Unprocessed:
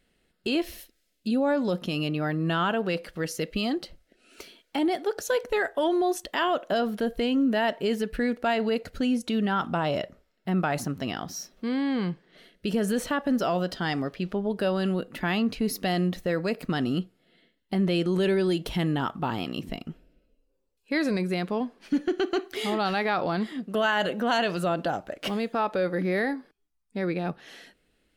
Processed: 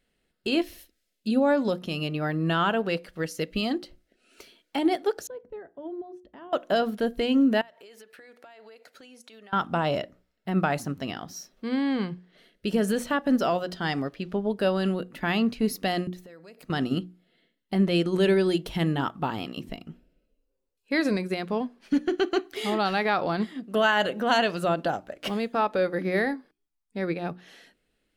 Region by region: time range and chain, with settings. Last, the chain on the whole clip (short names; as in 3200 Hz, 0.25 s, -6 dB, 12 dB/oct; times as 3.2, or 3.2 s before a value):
5.27–6.53 band-pass 120 Hz, Q 0.88 + mismatched tape noise reduction encoder only
7.61–9.53 HPF 570 Hz + notch 2900 Hz, Q 24 + compressor 12:1, threshold -41 dBFS
16.07–16.7 compressor 5:1, threshold -40 dBFS + tone controls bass -5 dB, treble +4 dB + mismatched tape noise reduction encoder only
whole clip: notches 60/120/180/240/300/360 Hz; upward expander 1.5:1, over -37 dBFS; gain +3.5 dB